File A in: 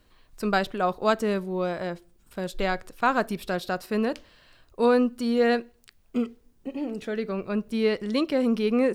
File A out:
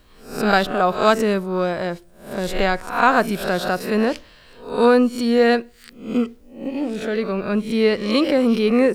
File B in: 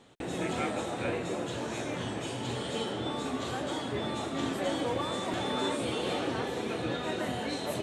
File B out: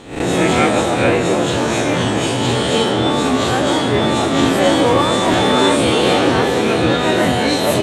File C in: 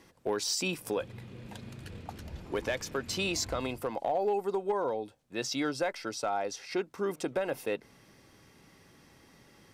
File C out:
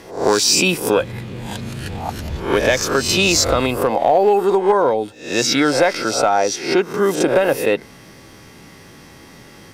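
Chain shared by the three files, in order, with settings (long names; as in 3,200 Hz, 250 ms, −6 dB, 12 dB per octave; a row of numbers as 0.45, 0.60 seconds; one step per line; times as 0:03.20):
peak hold with a rise ahead of every peak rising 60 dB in 0.47 s
normalise the peak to −1.5 dBFS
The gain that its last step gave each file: +6.0, +16.5, +15.0 decibels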